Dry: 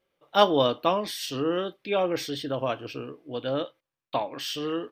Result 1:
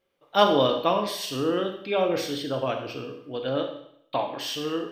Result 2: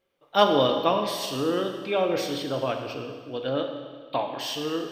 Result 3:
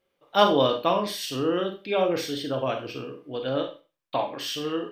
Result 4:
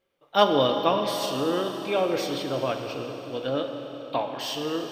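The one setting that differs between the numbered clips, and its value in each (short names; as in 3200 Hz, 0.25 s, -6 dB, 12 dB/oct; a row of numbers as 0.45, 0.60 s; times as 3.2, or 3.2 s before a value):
Schroeder reverb, RT60: 0.7, 1.7, 0.31, 4.4 s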